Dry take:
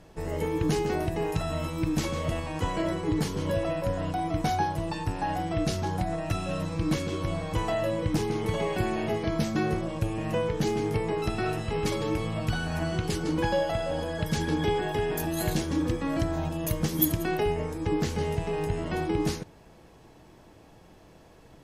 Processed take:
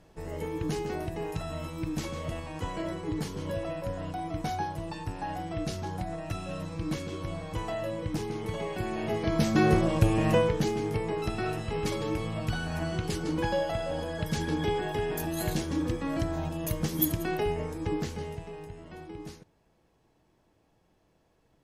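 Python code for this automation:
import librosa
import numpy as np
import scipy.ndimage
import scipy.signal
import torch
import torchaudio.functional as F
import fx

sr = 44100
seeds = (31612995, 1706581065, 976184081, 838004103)

y = fx.gain(x, sr, db=fx.line((8.81, -5.5), (9.75, 6.0), (10.3, 6.0), (10.72, -2.5), (17.85, -2.5), (18.74, -15.0)))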